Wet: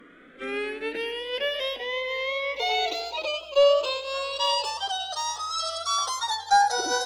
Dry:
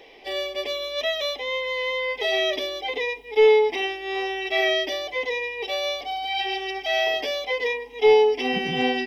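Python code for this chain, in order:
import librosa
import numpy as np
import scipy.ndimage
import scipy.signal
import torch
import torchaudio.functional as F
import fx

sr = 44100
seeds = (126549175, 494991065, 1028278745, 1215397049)

y = fx.speed_glide(x, sr, from_pct=60, to_pct=197)
y = fx.echo_warbled(y, sr, ms=92, feedback_pct=51, rate_hz=2.8, cents=145, wet_db=-14.5)
y = y * 10.0 ** (-2.5 / 20.0)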